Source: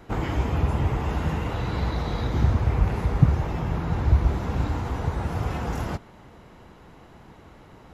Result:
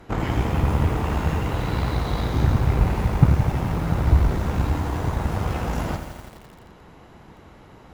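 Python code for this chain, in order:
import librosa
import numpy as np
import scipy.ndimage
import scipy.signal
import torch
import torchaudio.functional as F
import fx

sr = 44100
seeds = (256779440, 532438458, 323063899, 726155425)

y = fx.rev_schroeder(x, sr, rt60_s=0.85, comb_ms=30, drr_db=15.0)
y = fx.cheby_harmonics(y, sr, harmonics=(8,), levels_db=(-22,), full_scale_db=-4.0)
y = fx.echo_crushed(y, sr, ms=85, feedback_pct=80, bits=7, wet_db=-9.5)
y = F.gain(torch.from_numpy(y), 1.5).numpy()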